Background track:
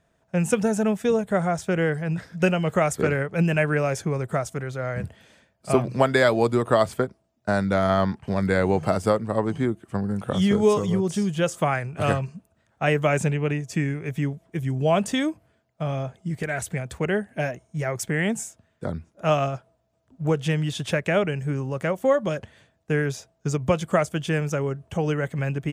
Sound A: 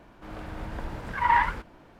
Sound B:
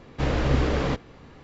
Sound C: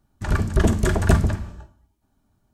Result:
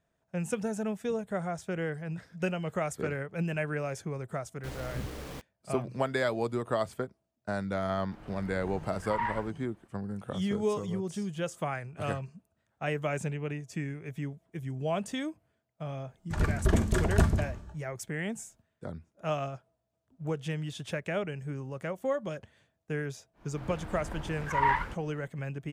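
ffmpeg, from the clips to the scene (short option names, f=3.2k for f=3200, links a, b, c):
-filter_complex "[1:a]asplit=2[a][b];[0:a]volume=-10.5dB[c];[2:a]acrusher=bits=4:mix=0:aa=0.000001,atrim=end=1.43,asetpts=PTS-STARTPTS,volume=-17.5dB,afade=t=in:d=0.004:c=hsin,afade=t=out:st=1.426:d=0.004:c=hsin,adelay=196245S[d];[a]atrim=end=1.99,asetpts=PTS-STARTPTS,volume=-11dB,afade=t=in:d=0.004:c=hsin,afade=t=out:st=1.986:d=0.004:c=hsin,adelay=7890[e];[3:a]atrim=end=2.53,asetpts=PTS-STARTPTS,volume=-7dB,afade=t=in:d=0.004:c=hsin,afade=t=out:st=2.526:d=0.004:c=hsin,adelay=16090[f];[b]atrim=end=1.99,asetpts=PTS-STARTPTS,volume=-4.5dB,afade=t=in:d=0.1,afade=t=out:st=1.89:d=0.1,adelay=23330[g];[c][d][e][f][g]amix=inputs=5:normalize=0"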